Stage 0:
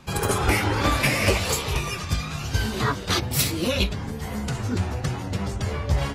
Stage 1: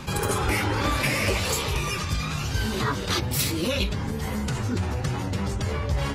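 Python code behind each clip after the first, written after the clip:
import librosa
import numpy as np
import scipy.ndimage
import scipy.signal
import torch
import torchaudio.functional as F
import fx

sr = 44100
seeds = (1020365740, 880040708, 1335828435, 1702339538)

y = fx.notch(x, sr, hz=700.0, q=12.0)
y = fx.env_flatten(y, sr, amount_pct=50)
y = y * librosa.db_to_amplitude(-5.0)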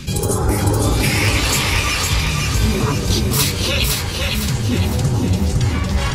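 y = fx.phaser_stages(x, sr, stages=2, low_hz=210.0, high_hz=2700.0, hz=0.45, feedback_pct=30)
y = fx.echo_feedback(y, sr, ms=508, feedback_pct=45, wet_db=-3)
y = y * librosa.db_to_amplitude(7.5)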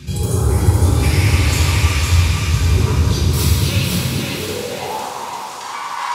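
y = fx.filter_sweep_highpass(x, sr, from_hz=81.0, to_hz=1000.0, start_s=3.4, end_s=5.04, q=7.0)
y = fx.rev_plate(y, sr, seeds[0], rt60_s=2.6, hf_ratio=0.85, predelay_ms=0, drr_db=-4.5)
y = y * librosa.db_to_amplitude(-8.5)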